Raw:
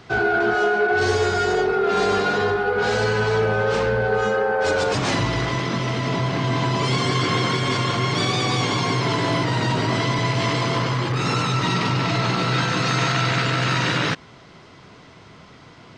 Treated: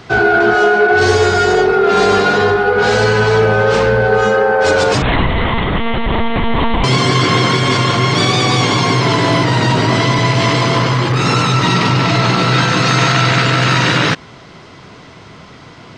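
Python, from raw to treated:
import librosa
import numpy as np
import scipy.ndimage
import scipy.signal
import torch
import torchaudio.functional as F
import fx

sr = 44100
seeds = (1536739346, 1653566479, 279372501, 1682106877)

y = fx.lpc_monotone(x, sr, seeds[0], pitch_hz=230.0, order=10, at=(5.02, 6.84))
y = y * librosa.db_to_amplitude(8.5)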